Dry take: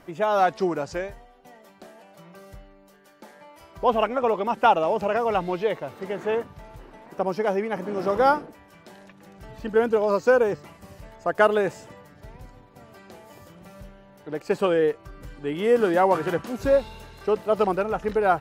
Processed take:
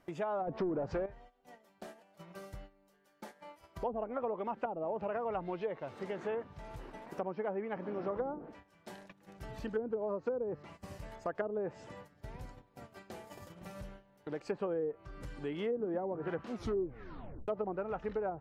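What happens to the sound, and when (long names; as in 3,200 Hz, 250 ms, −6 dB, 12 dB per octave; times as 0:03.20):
0:00.47–0:01.06: leveller curve on the samples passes 3
0:07.20–0:08.11: Bessel low-pass filter 3,000 Hz
0:16.49: tape stop 0.99 s
whole clip: noise gate −46 dBFS, range −16 dB; treble cut that deepens with the level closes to 450 Hz, closed at −15.5 dBFS; downward compressor 2 to 1, threshold −46 dBFS; level +1 dB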